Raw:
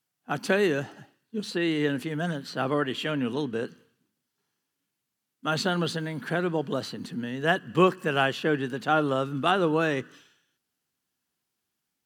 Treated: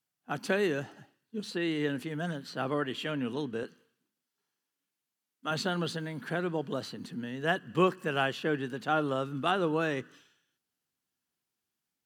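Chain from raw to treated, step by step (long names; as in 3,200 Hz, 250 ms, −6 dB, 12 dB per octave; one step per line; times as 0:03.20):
0:03.63–0:05.51: high-pass filter 280 Hz 6 dB per octave
level −5 dB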